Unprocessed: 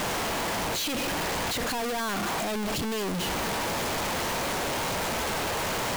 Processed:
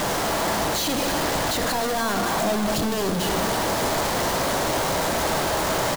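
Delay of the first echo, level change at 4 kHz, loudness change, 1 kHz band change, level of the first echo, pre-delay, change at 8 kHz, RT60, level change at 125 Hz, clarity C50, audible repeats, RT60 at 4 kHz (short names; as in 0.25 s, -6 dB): 0.295 s, +4.0 dB, +5.5 dB, +6.0 dB, -10.5 dB, 3 ms, +5.5 dB, 2.4 s, +6.0 dB, 6.0 dB, 1, 1.9 s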